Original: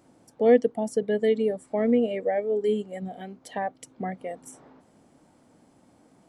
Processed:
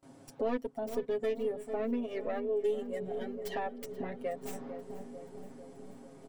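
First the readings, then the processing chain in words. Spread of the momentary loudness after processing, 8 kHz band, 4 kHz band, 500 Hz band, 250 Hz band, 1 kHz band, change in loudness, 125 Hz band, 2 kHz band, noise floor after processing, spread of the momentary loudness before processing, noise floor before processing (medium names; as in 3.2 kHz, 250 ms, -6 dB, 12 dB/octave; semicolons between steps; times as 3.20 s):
17 LU, -7.5 dB, -7.0 dB, -9.0 dB, -10.5 dB, -7.5 dB, -10.5 dB, no reading, -8.0 dB, -56 dBFS, 16 LU, -61 dBFS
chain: tracing distortion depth 0.16 ms; filtered feedback delay 447 ms, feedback 75%, low-pass 800 Hz, level -14 dB; dynamic bell 5.4 kHz, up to -4 dB, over -45 dBFS, Q 0.87; compression 2.5:1, threshold -39 dBFS, peak gain reduction 17 dB; comb 7.4 ms, depth 93%; on a send: feedback delay 480 ms, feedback 59%, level -20 dB; on the sum: gate with hold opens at -48 dBFS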